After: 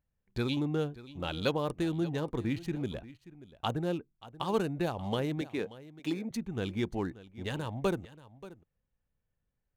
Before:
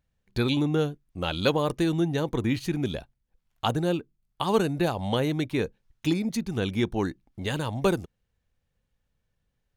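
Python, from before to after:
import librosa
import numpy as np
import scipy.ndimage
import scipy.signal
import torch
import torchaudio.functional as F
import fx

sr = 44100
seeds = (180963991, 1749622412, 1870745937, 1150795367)

y = fx.wiener(x, sr, points=9)
y = fx.highpass(y, sr, hz=220.0, slope=12, at=(5.41, 6.31))
y = y + 10.0 ** (-17.5 / 20.0) * np.pad(y, (int(582 * sr / 1000.0), 0))[:len(y)]
y = y * librosa.db_to_amplitude(-6.5)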